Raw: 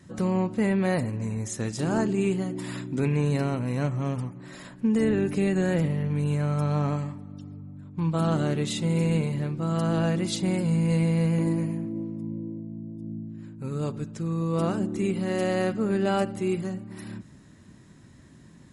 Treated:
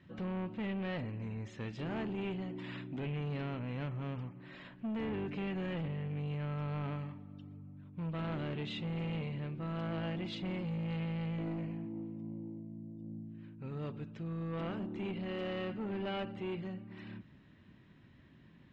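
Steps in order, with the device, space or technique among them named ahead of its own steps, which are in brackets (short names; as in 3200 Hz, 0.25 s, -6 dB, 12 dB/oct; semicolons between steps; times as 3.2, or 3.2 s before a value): overdriven synthesiser ladder filter (soft clip -25 dBFS, distortion -12 dB; ladder low-pass 3500 Hz, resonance 45%)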